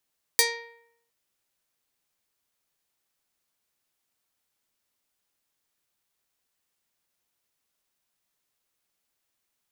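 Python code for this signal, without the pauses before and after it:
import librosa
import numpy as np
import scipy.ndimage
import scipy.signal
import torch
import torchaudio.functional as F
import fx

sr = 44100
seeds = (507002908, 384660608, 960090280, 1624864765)

y = fx.pluck(sr, length_s=0.71, note=70, decay_s=0.74, pick=0.35, brightness='medium')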